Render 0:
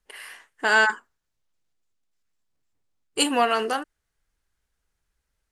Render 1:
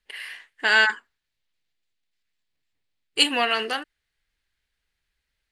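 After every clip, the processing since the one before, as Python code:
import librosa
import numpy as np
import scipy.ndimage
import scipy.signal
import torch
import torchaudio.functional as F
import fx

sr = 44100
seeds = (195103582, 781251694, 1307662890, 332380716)

y = fx.band_shelf(x, sr, hz=2800.0, db=10.0, octaves=1.7)
y = F.gain(torch.from_numpy(y), -4.0).numpy()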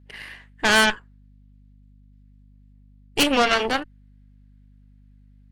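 y = fx.tilt_shelf(x, sr, db=6.5, hz=1300.0)
y = fx.add_hum(y, sr, base_hz=50, snr_db=23)
y = fx.cheby_harmonics(y, sr, harmonics=(8,), levels_db=(-12,), full_scale_db=-5.0)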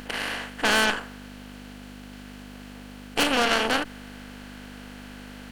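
y = fx.bin_compress(x, sr, power=0.4)
y = F.gain(torch.from_numpy(y), -7.0).numpy()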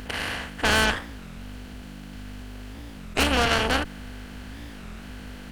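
y = fx.octave_divider(x, sr, octaves=2, level_db=2.0)
y = fx.record_warp(y, sr, rpm=33.33, depth_cents=250.0)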